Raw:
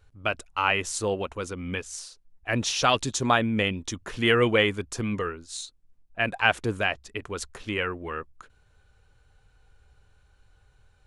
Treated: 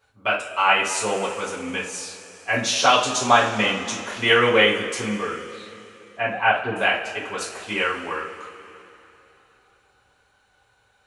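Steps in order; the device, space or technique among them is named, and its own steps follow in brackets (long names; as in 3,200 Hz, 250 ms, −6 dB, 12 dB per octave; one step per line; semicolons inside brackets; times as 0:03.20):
0:05.07–0:06.76: high-frequency loss of the air 460 metres
filter by subtraction (in parallel: low-pass filter 680 Hz 12 dB per octave + polarity inversion)
on the sum: coupled-rooms reverb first 0.34 s, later 3.2 s, from −18 dB, DRR −7.5 dB
level −2.5 dB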